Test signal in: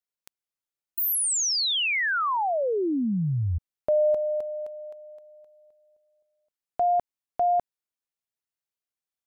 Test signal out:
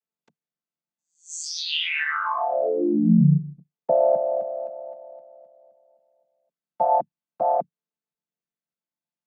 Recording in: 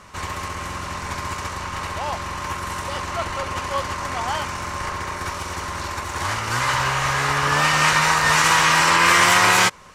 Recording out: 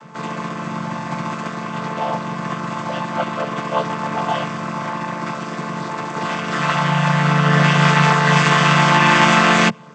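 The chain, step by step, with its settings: chord vocoder minor triad, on D3; dynamic EQ 3000 Hz, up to +5 dB, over -43 dBFS, Q 2.7; gain +4 dB

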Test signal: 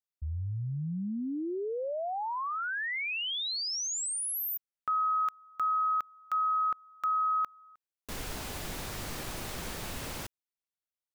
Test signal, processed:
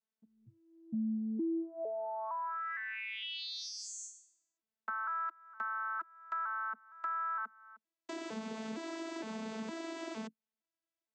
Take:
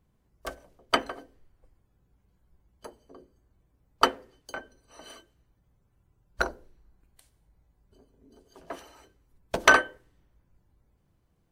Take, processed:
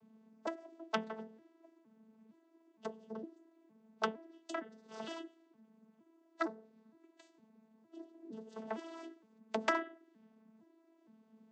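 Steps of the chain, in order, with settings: arpeggiated vocoder bare fifth, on A3, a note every 0.461 s; compressor 2.5:1, threshold -47 dBFS; gain +6 dB

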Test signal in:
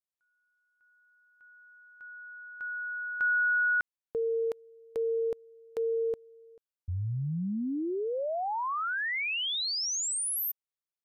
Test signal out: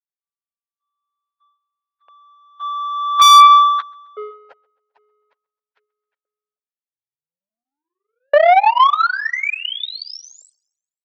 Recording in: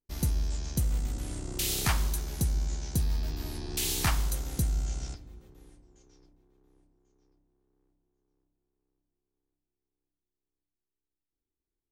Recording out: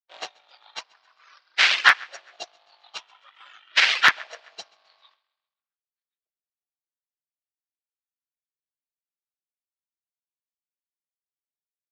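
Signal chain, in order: inharmonic rescaling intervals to 87%; LFO high-pass saw up 0.48 Hz 560–1800 Hz; power-law curve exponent 2; LPF 5900 Hz 24 dB/oct; on a send: feedback echo 0.132 s, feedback 45%, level -15.5 dB; on the sum: reverb removal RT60 1.8 s; in parallel at -4 dB: one-sided clip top -35 dBFS, bottom -19.5 dBFS; on the sum: three-band isolator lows -19 dB, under 520 Hz, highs -19 dB, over 4100 Hz; wavefolder -20 dBFS; HPF 120 Hz 12 dB/oct; maximiser +26.5 dB; upward expander 1.5:1, over -18 dBFS

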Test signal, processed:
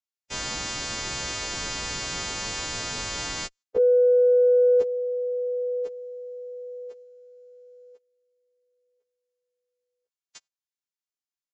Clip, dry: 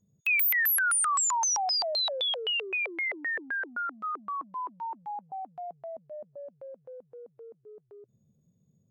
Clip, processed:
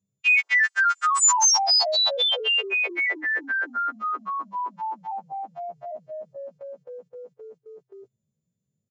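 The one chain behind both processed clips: frequency quantiser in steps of 2 st; gate -54 dBFS, range -15 dB; downsampling 16000 Hz; added harmonics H 5 -42 dB, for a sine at -15 dBFS; gain +5.5 dB

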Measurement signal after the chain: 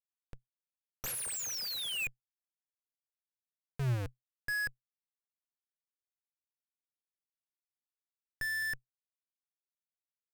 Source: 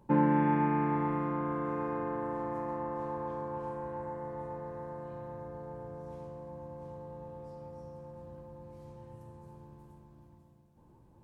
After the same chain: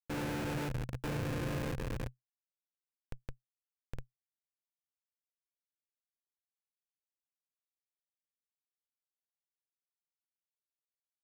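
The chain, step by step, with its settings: random-step tremolo 2.9 Hz, depth 95%; Schmitt trigger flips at -31.5 dBFS; thirty-one-band EQ 125 Hz +11 dB, 500 Hz +7 dB, 1600 Hz +6 dB, 2500 Hz +5 dB

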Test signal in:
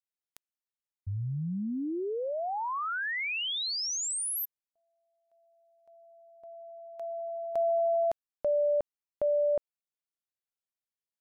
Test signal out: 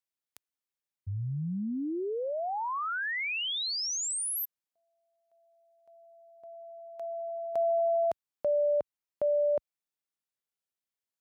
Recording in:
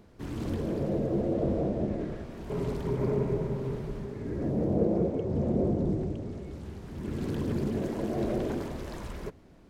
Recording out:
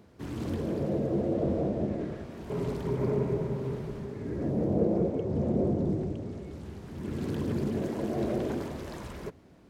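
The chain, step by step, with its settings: HPF 64 Hz

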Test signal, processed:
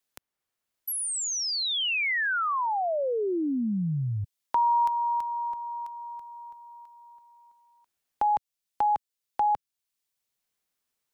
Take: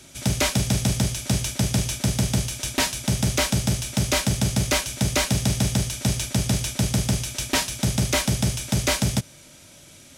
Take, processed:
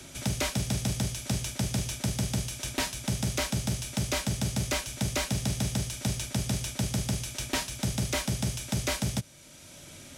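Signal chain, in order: three-band squash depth 40%; gain -7.5 dB

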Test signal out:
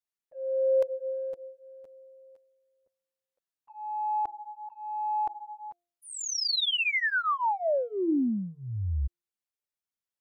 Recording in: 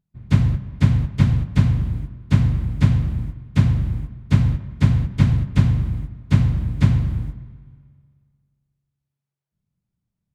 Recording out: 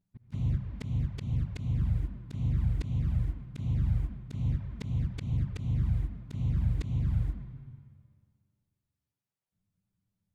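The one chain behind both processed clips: envelope flanger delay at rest 10.4 ms, full sweep at -12.5 dBFS; de-hum 347.4 Hz, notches 2; auto swell 0.513 s

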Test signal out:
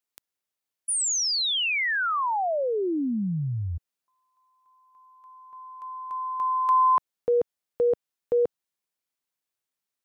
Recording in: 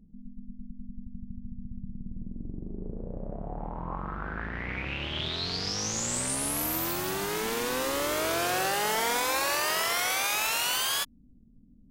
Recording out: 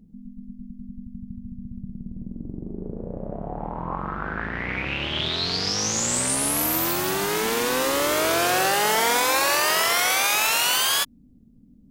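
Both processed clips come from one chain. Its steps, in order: low shelf 72 Hz -9.5 dB; gain +7 dB

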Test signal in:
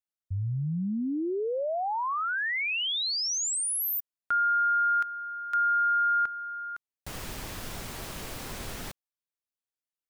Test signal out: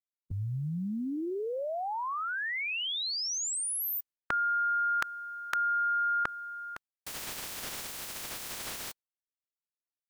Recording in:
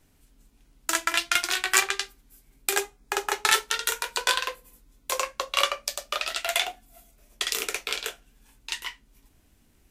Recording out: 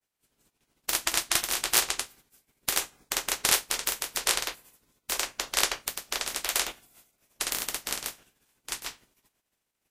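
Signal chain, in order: spectral limiter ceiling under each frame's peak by 25 dB; expander -48 dBFS; gain -2 dB

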